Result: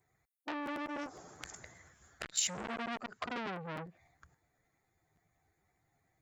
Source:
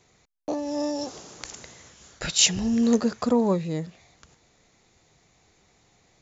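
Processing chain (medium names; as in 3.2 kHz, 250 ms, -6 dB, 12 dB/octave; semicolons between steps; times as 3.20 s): expander on every frequency bin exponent 1.5; high-pass 62 Hz 6 dB/octave; high-order bell 3.9 kHz -9.5 dB; compression 5:1, threshold -40 dBFS, peak gain reduction 20.5 dB; feedback echo behind a high-pass 106 ms, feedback 60%, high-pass 2.1 kHz, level -23 dB; crackling interface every 0.10 s, samples 512, repeat, from 0.65 s; transformer saturation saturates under 3.9 kHz; trim +8.5 dB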